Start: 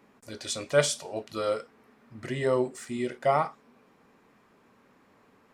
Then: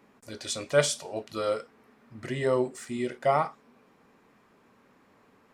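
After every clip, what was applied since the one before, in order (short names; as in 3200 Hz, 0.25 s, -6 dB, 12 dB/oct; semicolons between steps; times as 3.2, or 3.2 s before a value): nothing audible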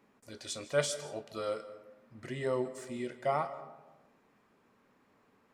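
digital reverb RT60 1.1 s, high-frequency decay 0.4×, pre-delay 0.11 s, DRR 14 dB; gain -7 dB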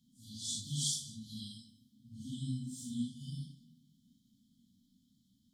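phase scrambler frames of 0.2 s; brick-wall FIR band-stop 280–3000 Hz; gain +3.5 dB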